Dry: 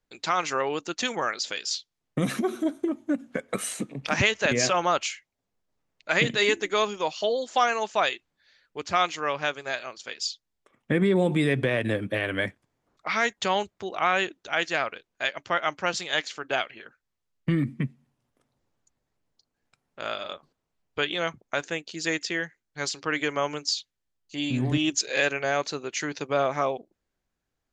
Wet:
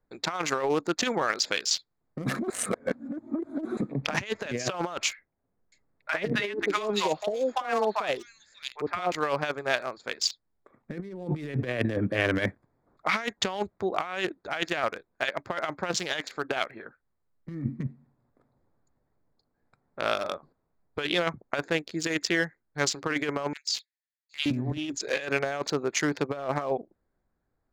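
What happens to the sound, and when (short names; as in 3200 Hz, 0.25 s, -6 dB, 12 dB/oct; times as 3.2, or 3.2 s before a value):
2.5–3.77 reverse
5.13–9.12 three bands offset in time mids, lows, highs 50/590 ms, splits 840/3500 Hz
23.53–24.46 steep high-pass 1700 Hz 72 dB/oct
whole clip: Wiener smoothing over 15 samples; negative-ratio compressor -29 dBFS, ratio -0.5; gain +2 dB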